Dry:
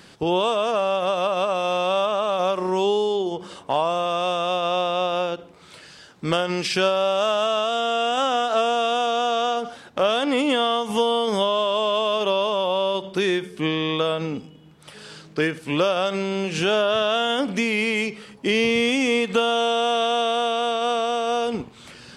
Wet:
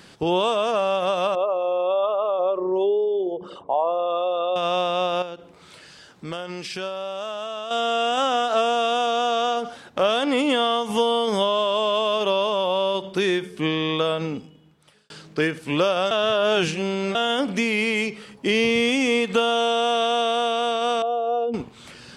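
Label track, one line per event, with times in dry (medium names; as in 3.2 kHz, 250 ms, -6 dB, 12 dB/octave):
1.350000	4.560000	resonances exaggerated exponent 2
5.220000	7.710000	compression 1.5:1, threshold -44 dBFS
14.260000	15.100000	fade out
16.110000	17.150000	reverse
21.020000	21.540000	spectral contrast enhancement exponent 1.9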